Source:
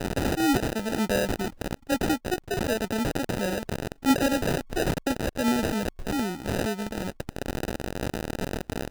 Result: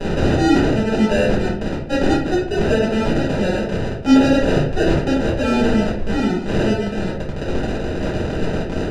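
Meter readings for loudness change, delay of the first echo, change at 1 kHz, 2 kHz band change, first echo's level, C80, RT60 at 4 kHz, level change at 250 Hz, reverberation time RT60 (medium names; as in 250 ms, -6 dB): +9.5 dB, no echo, +6.0 dB, +7.0 dB, no echo, 8.5 dB, 0.40 s, +10.0 dB, 0.55 s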